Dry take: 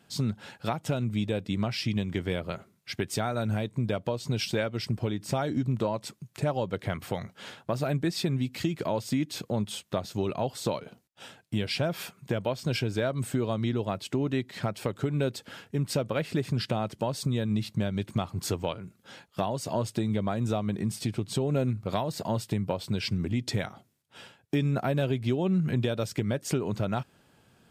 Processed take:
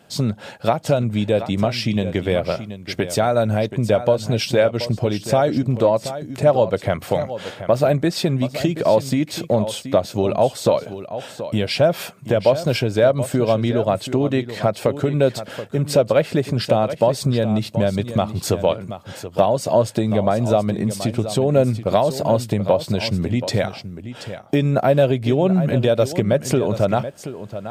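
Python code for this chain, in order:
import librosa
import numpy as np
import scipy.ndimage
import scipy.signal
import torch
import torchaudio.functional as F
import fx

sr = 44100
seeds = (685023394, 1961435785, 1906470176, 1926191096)

p1 = fx.peak_eq(x, sr, hz=590.0, db=9.0, octaves=0.75)
p2 = p1 + fx.echo_single(p1, sr, ms=729, db=-12.0, dry=0)
y = F.gain(torch.from_numpy(p2), 7.5).numpy()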